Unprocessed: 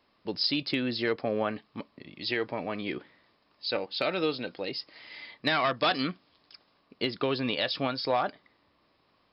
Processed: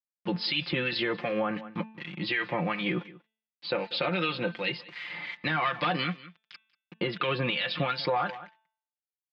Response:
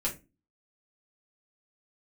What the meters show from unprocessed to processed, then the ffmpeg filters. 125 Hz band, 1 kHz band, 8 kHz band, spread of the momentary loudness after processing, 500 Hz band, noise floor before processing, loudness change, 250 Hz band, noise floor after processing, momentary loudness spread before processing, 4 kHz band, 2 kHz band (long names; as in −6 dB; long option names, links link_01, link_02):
+5.5 dB, +1.0 dB, can't be measured, 10 LU, −1.5 dB, −69 dBFS, 0.0 dB, −0.5 dB, below −85 dBFS, 14 LU, −0.5 dB, +3.0 dB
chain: -filter_complex "[0:a]acontrast=81,aeval=exprs='val(0)*gte(abs(val(0)),0.00708)':channel_layout=same,highpass=130,equalizer=frequency=170:width_type=q:width=4:gain=7,equalizer=frequency=240:width_type=q:width=4:gain=-6,equalizer=frequency=380:width_type=q:width=4:gain=-7,equalizer=frequency=650:width_type=q:width=4:gain=-7,lowpass=frequency=2800:width=0.5412,lowpass=frequency=2800:width=1.3066,acrossover=split=1300[link_01][link_02];[link_01]aeval=exprs='val(0)*(1-0.7/2+0.7/2*cos(2*PI*2.7*n/s))':channel_layout=same[link_03];[link_02]aeval=exprs='val(0)*(1-0.7/2-0.7/2*cos(2*PI*2.7*n/s))':channel_layout=same[link_04];[link_03][link_04]amix=inputs=2:normalize=0,aemphasis=mode=production:type=75kf,aecho=1:1:5.7:0.68,aecho=1:1:189:0.0708,alimiter=limit=-19dB:level=0:latency=1:release=46,acompressor=threshold=-34dB:ratio=1.5,bandreject=frequency=220.6:width_type=h:width=4,bandreject=frequency=441.2:width_type=h:width=4,bandreject=frequency=661.8:width_type=h:width=4,bandreject=frequency=882.4:width_type=h:width=4,bandreject=frequency=1103:width_type=h:width=4,bandreject=frequency=1323.6:width_type=h:width=4,bandreject=frequency=1544.2:width_type=h:width=4,bandreject=frequency=1764.8:width_type=h:width=4,bandreject=frequency=1985.4:width_type=h:width=4,bandreject=frequency=2206:width_type=h:width=4,bandreject=frequency=2426.6:width_type=h:width=4,bandreject=frequency=2647.2:width_type=h:width=4,bandreject=frequency=2867.8:width_type=h:width=4,bandreject=frequency=3088.4:width_type=h:width=4,bandreject=frequency=3309:width_type=h:width=4,bandreject=frequency=3529.6:width_type=h:width=4,bandreject=frequency=3750.2:width_type=h:width=4,bandreject=frequency=3970.8:width_type=h:width=4,volume=4dB"